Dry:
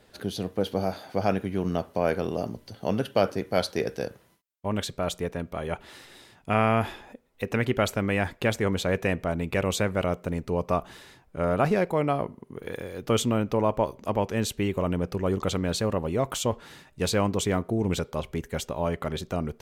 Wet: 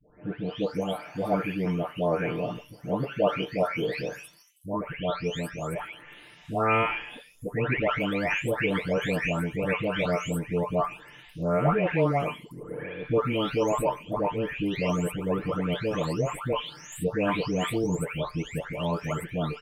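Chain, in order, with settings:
every frequency bin delayed by itself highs late, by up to 602 ms
high shelf with overshoot 3,400 Hz −6 dB, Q 3
comb filter 6.7 ms, depth 53%

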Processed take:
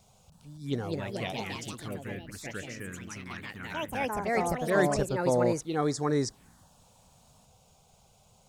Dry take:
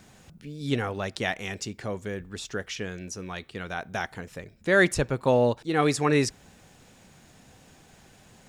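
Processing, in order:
phaser swept by the level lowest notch 280 Hz, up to 2,700 Hz, full sweep at −21.5 dBFS
delay with pitch and tempo change per echo 320 ms, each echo +3 semitones, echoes 3
level −4.5 dB

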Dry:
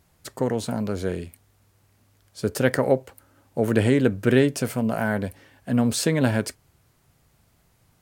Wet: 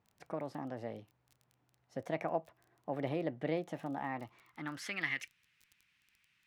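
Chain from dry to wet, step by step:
high-shelf EQ 5,000 Hz −10.5 dB
in parallel at −2 dB: downward compressor, threshold −28 dBFS, peak gain reduction 15 dB
on the sum: band-pass filter sweep 580 Hz → 1,900 Hz, 0:05.00–0:06.56
change of speed 1.24×
surface crackle 17 per second −47 dBFS
guitar amp tone stack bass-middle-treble 6-0-2
level +16.5 dB

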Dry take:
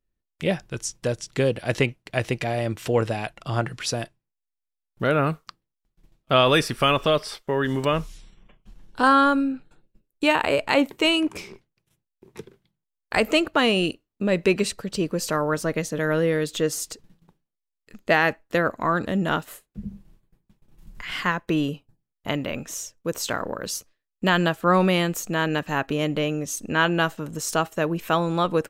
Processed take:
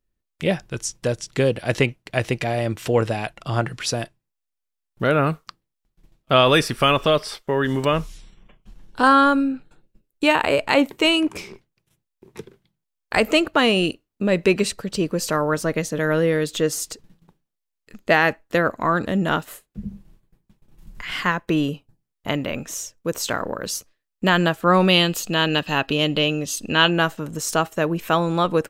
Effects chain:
gain on a spectral selection 0:24.89–0:26.91, 2,500–5,200 Hz +9 dB
level +2.5 dB

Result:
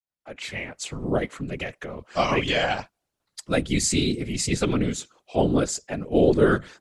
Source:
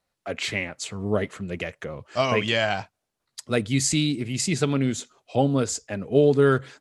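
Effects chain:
fade in at the beginning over 0.92 s
random phases in short frames

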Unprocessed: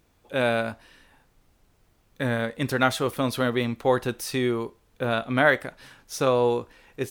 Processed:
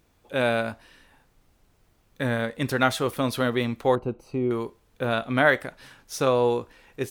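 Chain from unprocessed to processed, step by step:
0:03.95–0:04.51: moving average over 25 samples

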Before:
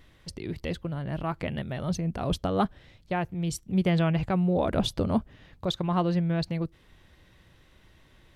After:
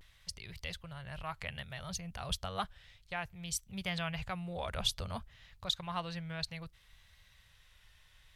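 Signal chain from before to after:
guitar amp tone stack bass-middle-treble 10-0-10
pitch vibrato 0.6 Hz 54 cents
level +1.5 dB

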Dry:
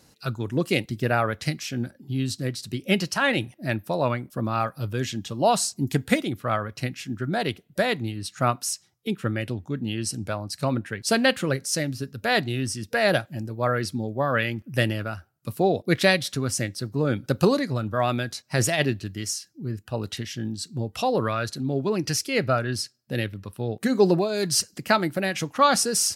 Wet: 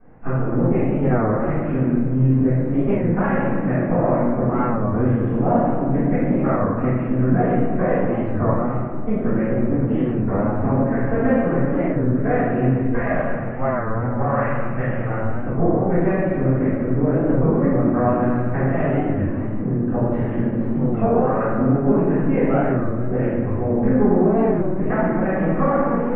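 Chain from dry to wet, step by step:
gain on one half-wave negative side −12 dB
0:12.78–0:15.04: parametric band 320 Hz −12.5 dB 1.7 octaves
downward compressor 6 to 1, threshold −31 dBFS, peak gain reduction 16.5 dB
Bessel low-pass filter 1,100 Hz, order 8
parametric band 110 Hz −7 dB 0.31 octaves
convolution reverb RT60 2.1 s, pre-delay 3 ms, DRR −18 dB
wow of a warped record 33 1/3 rpm, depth 160 cents

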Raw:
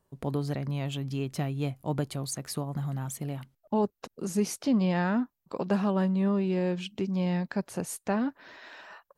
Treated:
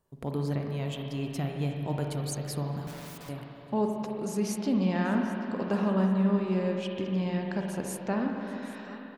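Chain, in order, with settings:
repeating echo 784 ms, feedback 27%, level −18 dB
0:02.87–0:03.29: wrap-around overflow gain 41 dB
spring reverb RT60 3.1 s, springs 42/54 ms, chirp 25 ms, DRR 1.5 dB
level −2.5 dB

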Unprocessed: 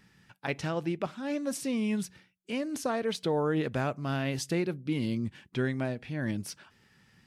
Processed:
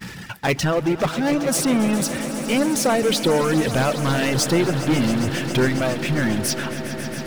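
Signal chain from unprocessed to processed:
power curve on the samples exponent 0.5
reverb reduction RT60 1.4 s
noise gate −44 dBFS, range −24 dB
on a send: echo that builds up and dies away 136 ms, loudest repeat 5, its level −15 dB
on the sum: level +7.5 dB

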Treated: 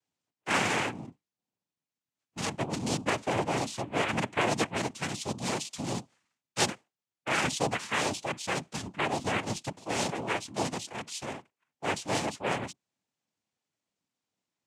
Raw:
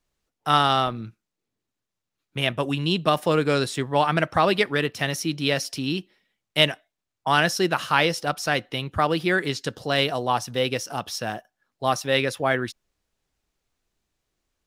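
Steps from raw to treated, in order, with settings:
sub-octave generator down 2 octaves, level +2 dB
cochlear-implant simulation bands 4
level −8 dB

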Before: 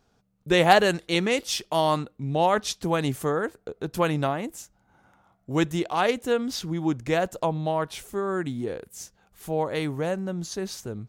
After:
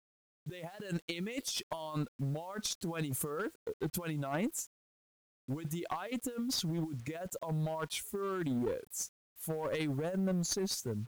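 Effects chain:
spectral dynamics exaggerated over time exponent 1.5
high-pass filter 190 Hz 6 dB per octave
compressor whose output falls as the input rises −37 dBFS, ratio −1
asymmetric clip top −32 dBFS
bit-depth reduction 10 bits, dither none

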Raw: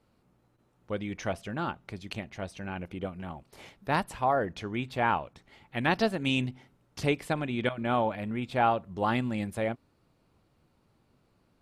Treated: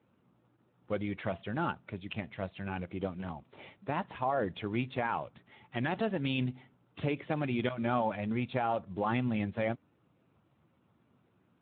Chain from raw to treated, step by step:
spectral magnitudes quantised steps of 15 dB
brickwall limiter −22 dBFS, peak gain reduction 9.5 dB
Speex 18 kbit/s 8,000 Hz

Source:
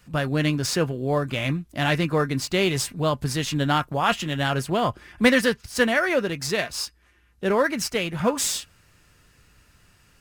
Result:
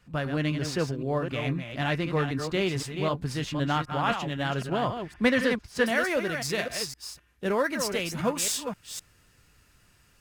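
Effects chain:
delay that plays each chunk backwards 257 ms, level −7 dB
high-shelf EQ 6,100 Hz −10.5 dB, from 0:05.86 +3 dB
level −5 dB

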